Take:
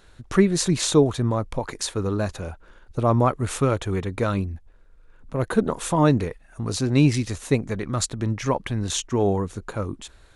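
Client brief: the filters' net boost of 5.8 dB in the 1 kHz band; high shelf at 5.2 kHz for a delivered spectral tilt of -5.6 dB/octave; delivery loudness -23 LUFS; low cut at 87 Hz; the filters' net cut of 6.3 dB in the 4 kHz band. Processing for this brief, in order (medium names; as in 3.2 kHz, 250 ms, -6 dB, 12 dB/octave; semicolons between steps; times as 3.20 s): high-pass 87 Hz; peaking EQ 1 kHz +7.5 dB; peaking EQ 4 kHz -6 dB; treble shelf 5.2 kHz -4.5 dB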